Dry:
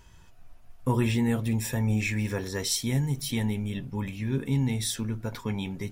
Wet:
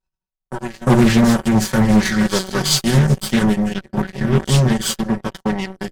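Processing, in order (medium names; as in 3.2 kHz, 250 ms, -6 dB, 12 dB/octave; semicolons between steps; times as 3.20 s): on a send: reverse echo 359 ms -9 dB; on the sum: Chebyshev shaper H 4 -19 dB, 5 -37 dB, 7 -16 dB, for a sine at -13.5 dBFS; gate -50 dBFS, range -19 dB; waveshaping leveller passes 2; comb 5.3 ms, depth 97%; reverse; upward compressor, threshold -37 dBFS; reverse; peaking EQ 2.7 kHz -9 dB 0.25 oct; formant shift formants -3 st; treble shelf 9.5 kHz -4 dB; loudspeaker Doppler distortion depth 0.33 ms; trim +7 dB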